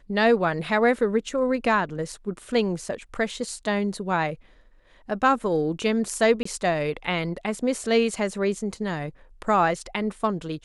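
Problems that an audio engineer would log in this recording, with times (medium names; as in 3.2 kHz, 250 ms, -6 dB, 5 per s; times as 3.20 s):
6.43–6.45 s: dropout 24 ms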